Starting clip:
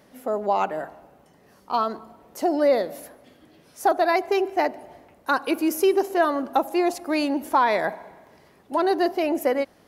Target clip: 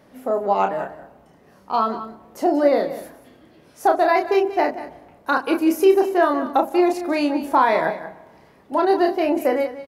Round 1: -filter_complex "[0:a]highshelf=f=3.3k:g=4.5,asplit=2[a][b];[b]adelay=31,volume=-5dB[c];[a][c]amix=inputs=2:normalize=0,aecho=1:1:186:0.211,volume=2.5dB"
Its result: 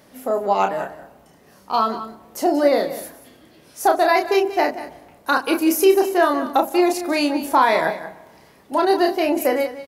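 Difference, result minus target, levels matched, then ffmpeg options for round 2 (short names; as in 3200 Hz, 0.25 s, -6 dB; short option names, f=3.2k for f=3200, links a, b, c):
8000 Hz band +9.5 dB
-filter_complex "[0:a]highshelf=f=3.3k:g=-7,asplit=2[a][b];[b]adelay=31,volume=-5dB[c];[a][c]amix=inputs=2:normalize=0,aecho=1:1:186:0.211,volume=2.5dB"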